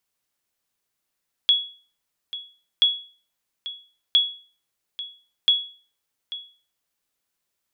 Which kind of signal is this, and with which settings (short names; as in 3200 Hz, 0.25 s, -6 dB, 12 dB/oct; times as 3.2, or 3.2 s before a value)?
sonar ping 3360 Hz, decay 0.40 s, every 1.33 s, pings 4, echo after 0.84 s, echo -15.5 dB -10 dBFS